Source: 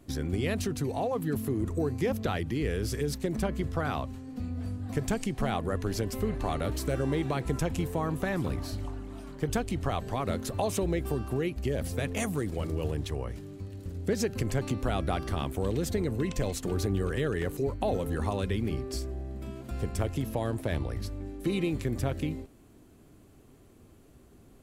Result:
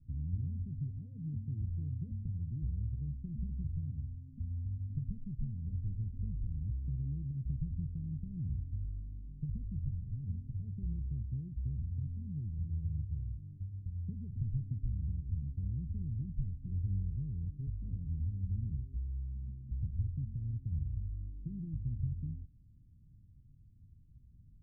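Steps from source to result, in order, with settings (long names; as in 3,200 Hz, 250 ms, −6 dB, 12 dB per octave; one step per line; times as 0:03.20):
inverse Chebyshev low-pass filter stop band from 890 Hz, stop band 80 dB
in parallel at −3 dB: downward compressor, threshold −41 dBFS, peak gain reduction 14 dB
on the sum: level −4 dB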